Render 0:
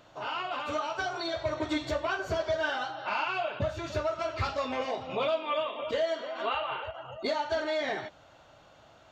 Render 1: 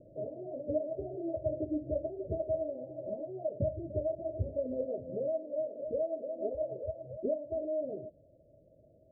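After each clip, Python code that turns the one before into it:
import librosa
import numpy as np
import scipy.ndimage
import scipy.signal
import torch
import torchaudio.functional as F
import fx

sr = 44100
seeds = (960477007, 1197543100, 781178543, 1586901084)

y = scipy.signal.sosfilt(scipy.signal.cheby1(8, 1.0, 640.0, 'lowpass', fs=sr, output='sos'), x)
y = fx.rider(y, sr, range_db=5, speed_s=0.5)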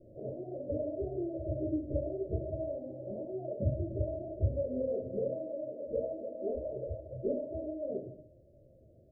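y = fx.room_shoebox(x, sr, seeds[0], volume_m3=43.0, walls='mixed', distance_m=1.1)
y = y * 10.0 ** (-6.5 / 20.0)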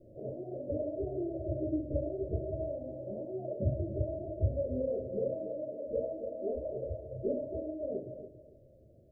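y = fx.echo_feedback(x, sr, ms=281, feedback_pct=24, wet_db=-12)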